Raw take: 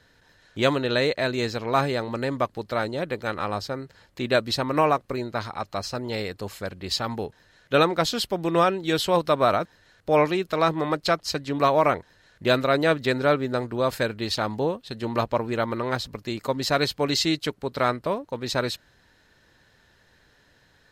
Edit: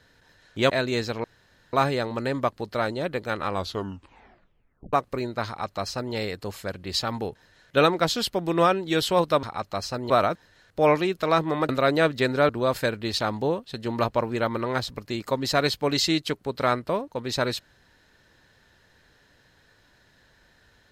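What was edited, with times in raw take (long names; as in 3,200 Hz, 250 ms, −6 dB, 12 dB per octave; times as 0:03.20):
0:00.70–0:01.16: remove
0:01.70: splice in room tone 0.49 s
0:03.45: tape stop 1.45 s
0:05.44–0:06.11: duplicate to 0:09.40
0:10.99–0:12.55: remove
0:13.35–0:13.66: remove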